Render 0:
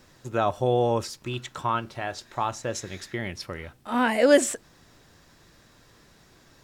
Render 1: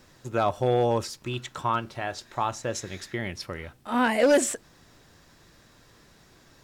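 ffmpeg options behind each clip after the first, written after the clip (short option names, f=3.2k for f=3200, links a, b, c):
-af "volume=14.5dB,asoftclip=hard,volume=-14.5dB"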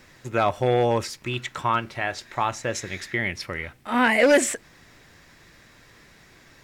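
-af "equalizer=f=2.1k:t=o:w=0.69:g=9,volume=2dB"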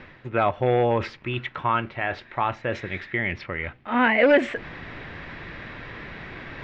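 -af "lowpass=f=3.1k:w=0.5412,lowpass=f=3.1k:w=1.3066,areverse,acompressor=mode=upward:threshold=-24dB:ratio=2.5,areverse"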